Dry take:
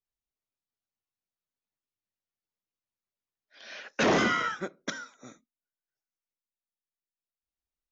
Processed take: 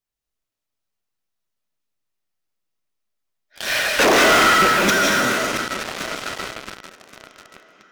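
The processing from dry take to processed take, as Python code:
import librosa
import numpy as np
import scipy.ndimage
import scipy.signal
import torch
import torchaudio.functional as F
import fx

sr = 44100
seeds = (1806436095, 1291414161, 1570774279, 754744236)

p1 = fx.rattle_buzz(x, sr, strikes_db=-42.0, level_db=-23.0)
p2 = 10.0 ** (-23.0 / 20.0) * np.tanh(p1 / 10.0 ** (-23.0 / 20.0))
p3 = fx.bessel_highpass(p2, sr, hz=400.0, order=4, at=(3.68, 4.32))
p4 = p3 + fx.echo_swing(p3, sr, ms=1124, ratio=1.5, feedback_pct=54, wet_db=-18.0, dry=0)
p5 = fx.rev_freeverb(p4, sr, rt60_s=1.0, hf_ratio=0.75, predelay_ms=115, drr_db=0.5)
p6 = fx.fuzz(p5, sr, gain_db=47.0, gate_db=-47.0)
p7 = p5 + (p6 * librosa.db_to_amplitude(-9.0))
y = p7 * librosa.db_to_amplitude(5.5)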